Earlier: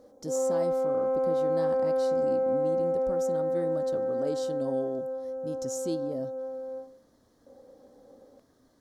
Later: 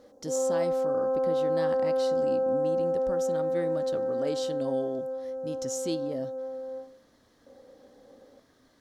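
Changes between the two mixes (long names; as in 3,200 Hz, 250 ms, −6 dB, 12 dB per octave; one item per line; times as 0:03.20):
speech: add parametric band 2,500 Hz +11 dB 1.7 octaves
background: add linear-phase brick-wall low-pass 2,000 Hz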